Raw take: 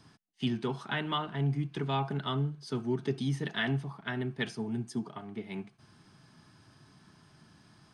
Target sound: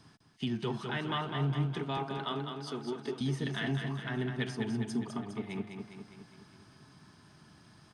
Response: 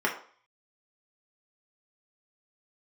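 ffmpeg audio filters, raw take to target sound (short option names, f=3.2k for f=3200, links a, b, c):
-filter_complex "[0:a]alimiter=level_in=0.5dB:limit=-24dB:level=0:latency=1:release=99,volume=-0.5dB,asettb=1/sr,asplit=3[a][b][c];[a]atrim=end=1.974[d];[b]atrim=start=1.97:end=3.21,asetpts=PTS-STARTPTS,afade=t=in:d=0.004:c=qsin,afade=t=out:st=1.236:d=0.004:c=qsin,highpass=300[e];[c]atrim=start=3.206[f];[d][e]acrossfade=d=0.004:c1=hsin:c2=qsin[g];[g][f]acrossfade=d=0.004:c1=qsin:c2=hsin,aecho=1:1:204|408|612|816|1020|1224|1428:0.501|0.286|0.163|0.0928|0.0529|0.0302|0.0172"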